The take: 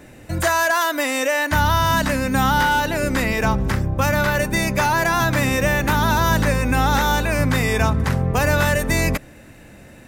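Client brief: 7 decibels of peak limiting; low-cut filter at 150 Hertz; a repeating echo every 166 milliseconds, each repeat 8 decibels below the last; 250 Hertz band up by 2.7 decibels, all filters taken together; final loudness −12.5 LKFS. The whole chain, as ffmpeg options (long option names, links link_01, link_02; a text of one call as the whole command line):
ffmpeg -i in.wav -af "highpass=150,equalizer=frequency=250:width_type=o:gain=4.5,alimiter=limit=-11.5dB:level=0:latency=1,aecho=1:1:166|332|498|664|830:0.398|0.159|0.0637|0.0255|0.0102,volume=8dB" out.wav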